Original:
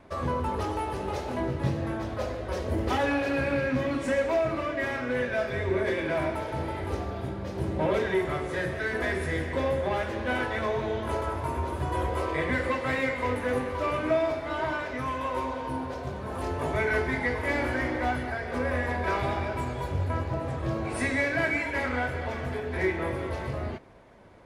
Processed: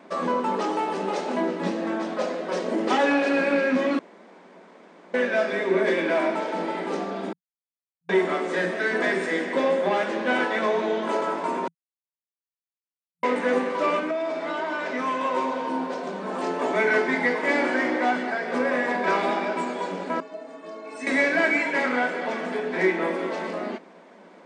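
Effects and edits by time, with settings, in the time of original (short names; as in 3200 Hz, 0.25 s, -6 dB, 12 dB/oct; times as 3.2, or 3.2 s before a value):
3.99–5.14 room tone
7.33–8.09 mute
11.68–13.23 mute
13.99–14.86 compressor 4:1, threshold -30 dBFS
20.2–21.07 metallic resonator 130 Hz, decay 0.26 s, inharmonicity 0.03
whole clip: FFT band-pass 170–9200 Hz; gain +5.5 dB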